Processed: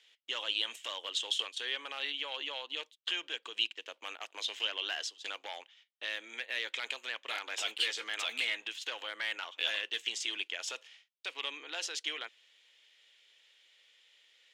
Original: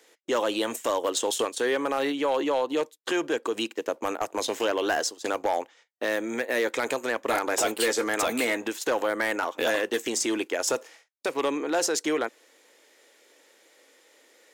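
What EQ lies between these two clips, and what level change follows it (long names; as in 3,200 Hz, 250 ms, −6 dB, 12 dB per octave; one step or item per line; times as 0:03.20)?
resonant band-pass 3,100 Hz, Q 3.7
+4.0 dB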